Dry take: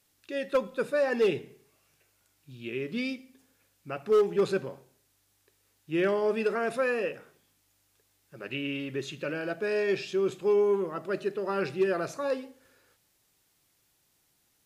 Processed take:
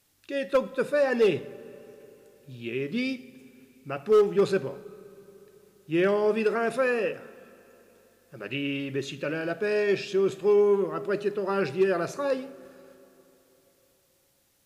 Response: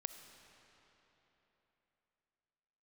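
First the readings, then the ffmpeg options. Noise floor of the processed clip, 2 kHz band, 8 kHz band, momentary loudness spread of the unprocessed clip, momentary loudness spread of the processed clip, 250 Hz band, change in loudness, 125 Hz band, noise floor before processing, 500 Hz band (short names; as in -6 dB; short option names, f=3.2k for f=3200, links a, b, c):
-67 dBFS, +2.5 dB, n/a, 12 LU, 15 LU, +3.5 dB, +3.0 dB, +4.0 dB, -71 dBFS, +3.0 dB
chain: -filter_complex "[0:a]asplit=2[a][b];[1:a]atrim=start_sample=2205,lowshelf=f=380:g=7[c];[b][c]afir=irnorm=-1:irlink=0,volume=-7.5dB[d];[a][d]amix=inputs=2:normalize=0"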